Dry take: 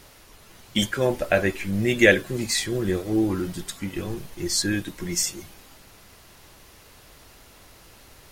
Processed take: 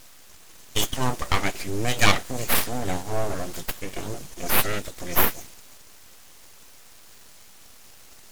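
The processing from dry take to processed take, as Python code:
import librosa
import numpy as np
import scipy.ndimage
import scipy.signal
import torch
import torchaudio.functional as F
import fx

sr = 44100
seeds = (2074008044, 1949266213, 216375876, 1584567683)

y = fx.peak_eq(x, sr, hz=7000.0, db=10.5, octaves=0.99)
y = np.abs(y)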